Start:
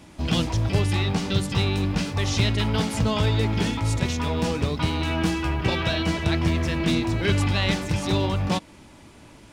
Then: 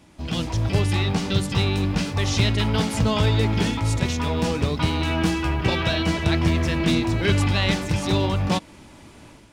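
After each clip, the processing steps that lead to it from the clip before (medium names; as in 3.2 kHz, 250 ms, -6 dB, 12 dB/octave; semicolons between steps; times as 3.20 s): level rider gain up to 8 dB; trim -5 dB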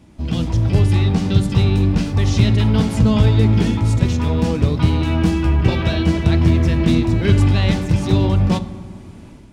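bass shelf 400 Hz +11 dB; reverberation RT60 1.6 s, pre-delay 4 ms, DRR 11.5 dB; trim -2.5 dB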